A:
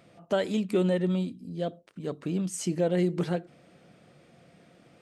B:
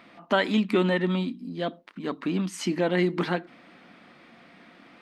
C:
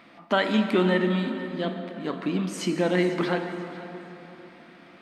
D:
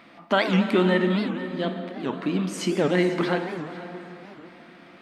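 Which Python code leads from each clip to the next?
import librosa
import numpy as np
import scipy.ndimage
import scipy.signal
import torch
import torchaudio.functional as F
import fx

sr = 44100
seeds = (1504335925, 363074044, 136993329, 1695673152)

y1 = fx.graphic_eq(x, sr, hz=(125, 250, 500, 1000, 2000, 4000, 8000), db=(-12, 11, -5, 11, 9, 7, -7))
y2 = fx.echo_feedback(y1, sr, ms=491, feedback_pct=30, wet_db=-17.0)
y2 = fx.rev_plate(y2, sr, seeds[0], rt60_s=3.5, hf_ratio=0.6, predelay_ms=0, drr_db=5.5)
y3 = fx.record_warp(y2, sr, rpm=78.0, depth_cents=250.0)
y3 = y3 * librosa.db_to_amplitude(1.5)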